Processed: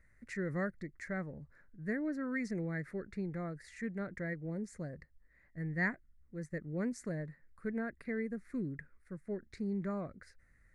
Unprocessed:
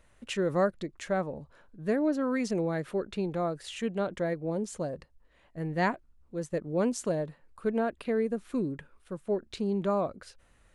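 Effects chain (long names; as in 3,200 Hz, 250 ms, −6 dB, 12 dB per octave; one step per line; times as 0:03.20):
drawn EQ curve 150 Hz 0 dB, 960 Hz −15 dB, 2,000 Hz +6 dB, 3,000 Hz −27 dB, 4,400 Hz −10 dB
level −3 dB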